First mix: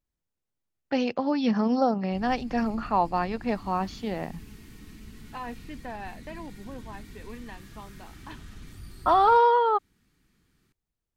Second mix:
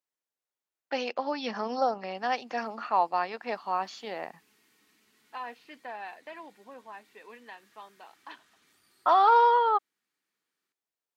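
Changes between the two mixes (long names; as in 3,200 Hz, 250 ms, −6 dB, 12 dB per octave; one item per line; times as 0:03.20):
background −11.0 dB
master: add high-pass filter 540 Hz 12 dB per octave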